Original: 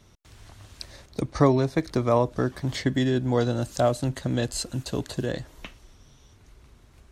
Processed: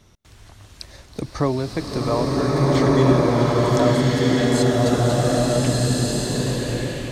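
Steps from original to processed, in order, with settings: in parallel at 0 dB: compression, threshold -31 dBFS, peak gain reduction 16.5 dB; on the sum: swelling reverb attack 1550 ms, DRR -8 dB; trim -3.5 dB

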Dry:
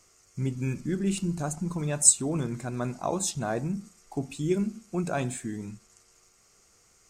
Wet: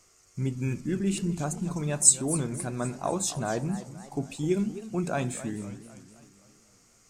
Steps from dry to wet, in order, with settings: modulated delay 256 ms, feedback 52%, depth 217 cents, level -14 dB

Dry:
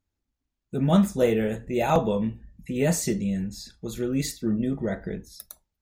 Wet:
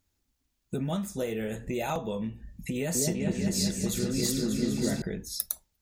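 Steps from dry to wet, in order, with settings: compression 6:1, threshold -34 dBFS, peak gain reduction 18 dB; treble shelf 3 kHz +8.5 dB; 2.75–5.02 s: delay with an opening low-pass 197 ms, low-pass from 750 Hz, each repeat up 2 oct, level 0 dB; trim +4 dB

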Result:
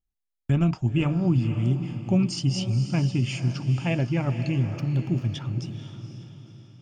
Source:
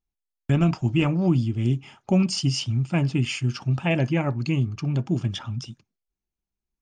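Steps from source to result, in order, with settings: 4.79–5.29 s: median filter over 5 samples; bass shelf 160 Hz +7.5 dB; echo that smears into a reverb 498 ms, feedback 43%, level -9.5 dB; trim -5 dB

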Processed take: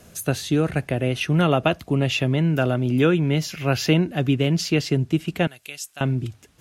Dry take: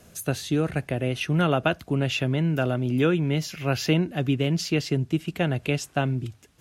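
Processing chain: 1.40–2.38 s: band-stop 1.5 kHz, Q 7.9; 5.47–6.01 s: pre-emphasis filter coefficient 0.97; trim +3.5 dB

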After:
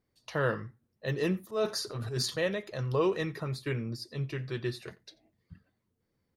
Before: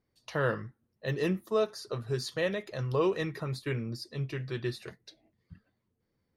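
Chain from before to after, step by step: 1.43–2.36 s: transient shaper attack -10 dB, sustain +10 dB; echo from a far wall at 15 m, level -23 dB

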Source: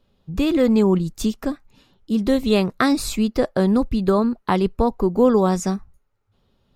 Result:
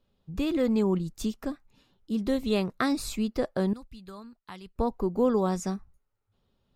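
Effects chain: 3.73–4.76 s: amplifier tone stack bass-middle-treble 5-5-5; trim -8.5 dB

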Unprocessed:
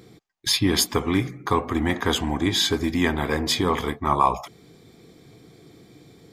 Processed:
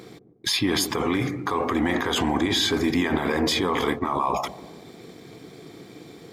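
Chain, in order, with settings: high-pass 270 Hz 6 dB/octave; treble shelf 4.4 kHz -5.5 dB; in parallel at +1.5 dB: compressor with a negative ratio -31 dBFS, ratio -1; on the sum: peak limiter -13.5 dBFS, peak gain reduction 8 dB; crossover distortion -56 dBFS; feedback echo behind a low-pass 146 ms, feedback 48%, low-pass 470 Hz, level -8.5 dB

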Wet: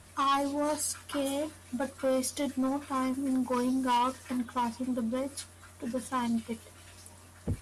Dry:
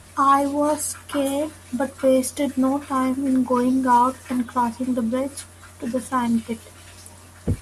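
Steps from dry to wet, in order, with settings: 3.14–3.97 s: treble shelf 7 kHz +5.5 dB; saturation -14.5 dBFS, distortion -16 dB; dynamic bell 4.7 kHz, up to +7 dB, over -44 dBFS, Q 0.91; trim -8 dB

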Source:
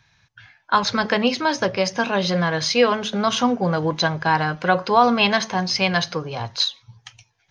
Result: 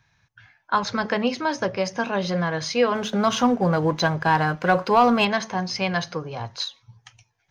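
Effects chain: peaking EQ 3.8 kHz -5.5 dB 1.4 oct; 2.95–5.25 s: waveshaping leveller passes 1; trim -3 dB

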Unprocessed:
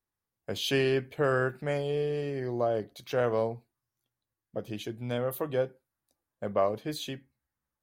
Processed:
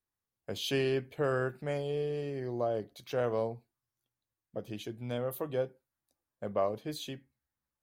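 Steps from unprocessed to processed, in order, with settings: dynamic bell 1.7 kHz, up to -3 dB, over -47 dBFS, Q 1.3; trim -3.5 dB

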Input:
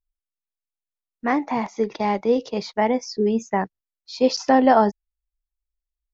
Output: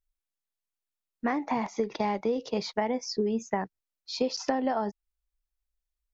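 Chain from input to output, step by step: compression 12:1, threshold -24 dBFS, peak gain reduction 14.5 dB

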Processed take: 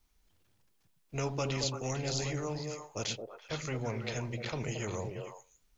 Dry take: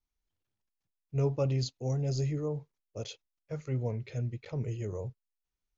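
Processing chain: repeats whose band climbs or falls 112 ms, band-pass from 170 Hz, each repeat 1.4 oct, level -2.5 dB; spectrum-flattening compressor 2:1

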